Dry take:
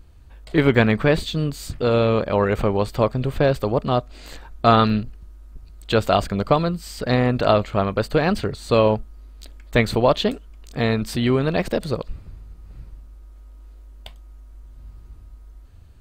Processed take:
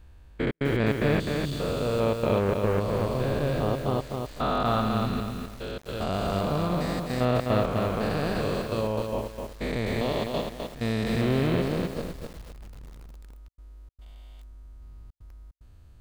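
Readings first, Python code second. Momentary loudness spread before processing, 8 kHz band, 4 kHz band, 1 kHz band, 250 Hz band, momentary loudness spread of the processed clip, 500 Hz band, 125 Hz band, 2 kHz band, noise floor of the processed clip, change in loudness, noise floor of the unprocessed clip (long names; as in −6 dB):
9 LU, −5.0 dB, −7.0 dB, −7.5 dB, −5.5 dB, 11 LU, −7.0 dB, −5.0 dB, −7.5 dB, −50 dBFS, −7.0 dB, −44 dBFS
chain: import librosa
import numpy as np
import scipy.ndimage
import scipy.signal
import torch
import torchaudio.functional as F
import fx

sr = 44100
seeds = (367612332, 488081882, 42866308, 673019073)

y = fx.spec_steps(x, sr, hold_ms=400)
y = fx.step_gate(y, sr, bpm=148, pattern='xxxxx.xxx.xxxxxx', floor_db=-60.0, edge_ms=4.5)
y = fx.echo_crushed(y, sr, ms=255, feedback_pct=35, bits=7, wet_db=-4.0)
y = y * librosa.db_to_amplitude(-3.0)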